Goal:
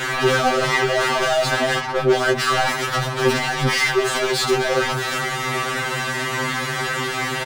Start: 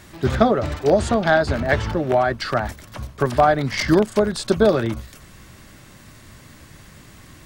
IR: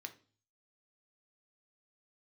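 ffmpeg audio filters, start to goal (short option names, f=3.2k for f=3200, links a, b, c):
-filter_complex "[0:a]asettb=1/sr,asplit=3[a][b][c];[a]atrim=end=0.704[d];[b]atrim=start=0.7:end=1.12,asetpts=PTS-STARTPTS,afade=t=in:d=0.004:c=qsin,afade=t=out:st=0.416:d=0.004:c=qsin,highshelf=f=2.8k:t=q:w=3:g=-9.5[e];[c]atrim=start=1.116[f];[d][e]acrossfade=d=0.004:c1=hsin:c2=qsin[g];[g][f]acrossfade=d=0.004:c1=qsin:c2=hsin,asettb=1/sr,asplit=3[h][i][j];[h]atrim=end=1.794[k];[i]atrim=start=1.79:end=2.35,asetpts=PTS-STARTPTS,afade=t=in:d=0.004:c=qsin,afade=t=out:st=0.556:d=0.004:c=qsin,agate=range=-33dB:threshold=-12dB:ratio=3:detection=peak[l];[j]atrim=start=2.346[m];[k][l]acrossfade=d=0.004:c1=hsin:c2=qsin[n];[n][m]acrossfade=d=0.004:c1=qsin:c2=hsin,asplit=2[o][p];[p]highpass=f=720:p=1,volume=39dB,asoftclip=type=tanh:threshold=-2dB[q];[o][q]amix=inputs=2:normalize=0,lowpass=f=1.7k:p=1,volume=-6dB,volume=17dB,asoftclip=hard,volume=-17dB,asplit=2[r][s];[s]adelay=13,volume=-5dB[t];[r][t]amix=inputs=2:normalize=0,asplit=2[u][v];[1:a]atrim=start_sample=2205,asetrate=24255,aresample=44100[w];[v][w]afir=irnorm=-1:irlink=0,volume=-6dB[x];[u][x]amix=inputs=2:normalize=0,afftfilt=real='re*2.45*eq(mod(b,6),0)':imag='im*2.45*eq(mod(b,6),0)':win_size=2048:overlap=0.75,volume=-3dB"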